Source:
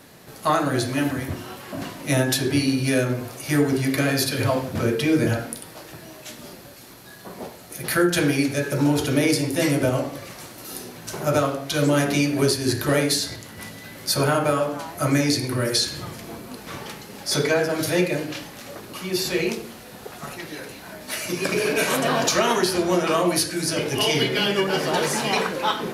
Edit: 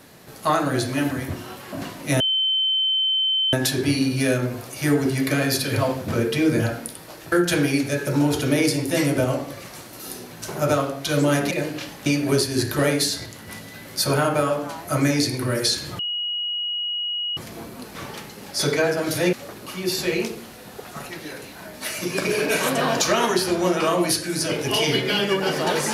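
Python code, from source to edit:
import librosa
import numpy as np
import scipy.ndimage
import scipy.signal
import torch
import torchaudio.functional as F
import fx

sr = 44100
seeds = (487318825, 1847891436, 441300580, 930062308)

y = fx.edit(x, sr, fx.insert_tone(at_s=2.2, length_s=1.33, hz=3080.0, db=-18.0),
    fx.cut(start_s=5.99, length_s=1.98),
    fx.insert_tone(at_s=16.09, length_s=1.38, hz=2900.0, db=-23.5),
    fx.move(start_s=18.05, length_s=0.55, to_s=12.16), tone=tone)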